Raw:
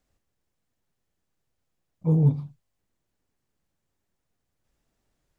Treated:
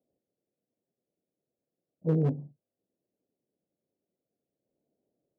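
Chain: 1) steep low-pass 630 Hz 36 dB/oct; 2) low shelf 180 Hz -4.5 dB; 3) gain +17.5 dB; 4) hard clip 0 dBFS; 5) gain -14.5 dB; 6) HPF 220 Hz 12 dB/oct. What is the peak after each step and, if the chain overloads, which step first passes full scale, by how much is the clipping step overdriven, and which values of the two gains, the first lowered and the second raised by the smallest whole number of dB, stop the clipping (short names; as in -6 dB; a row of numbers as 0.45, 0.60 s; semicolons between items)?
-11.0, -13.5, +4.0, 0.0, -14.5, -15.5 dBFS; step 3, 4.0 dB; step 3 +13.5 dB, step 5 -10.5 dB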